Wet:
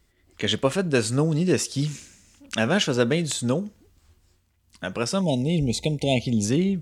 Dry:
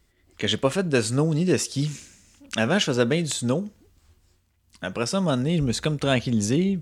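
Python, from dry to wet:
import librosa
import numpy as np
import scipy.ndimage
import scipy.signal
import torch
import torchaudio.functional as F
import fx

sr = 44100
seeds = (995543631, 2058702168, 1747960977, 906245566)

y = fx.brickwall_bandstop(x, sr, low_hz=930.0, high_hz=2000.0, at=(5.21, 6.45))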